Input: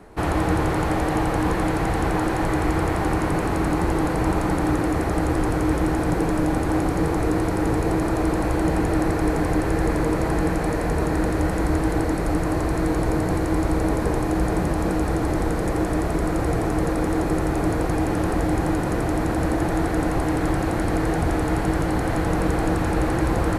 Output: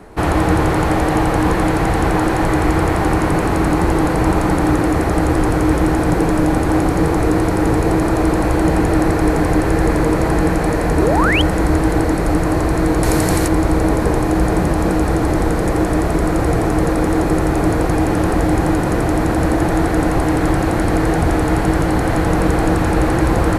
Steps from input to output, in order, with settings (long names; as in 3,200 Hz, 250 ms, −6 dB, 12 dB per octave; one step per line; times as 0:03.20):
0:10.97–0:11.42: sound drawn into the spectrogram rise 270–3,400 Hz −24 dBFS
0:13.03–0:13.48: high-shelf EQ 2,800 Hz +12 dB
level +6.5 dB